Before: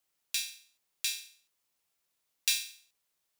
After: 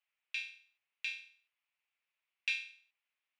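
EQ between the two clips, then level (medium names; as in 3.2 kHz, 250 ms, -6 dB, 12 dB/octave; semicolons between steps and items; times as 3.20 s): high-pass 720 Hz 12 dB/octave; resonant low-pass 2.5 kHz, resonance Q 3.3; -7.5 dB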